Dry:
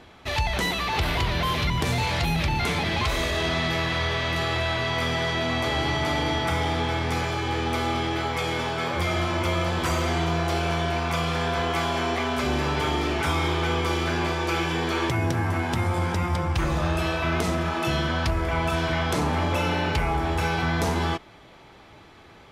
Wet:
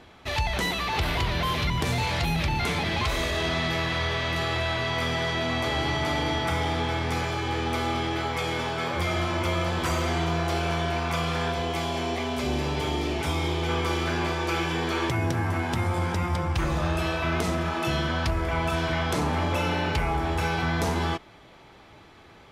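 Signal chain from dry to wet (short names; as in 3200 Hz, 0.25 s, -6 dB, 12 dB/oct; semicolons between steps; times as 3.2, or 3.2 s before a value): 11.52–13.69 bell 1400 Hz -8 dB 0.96 oct; gain -1.5 dB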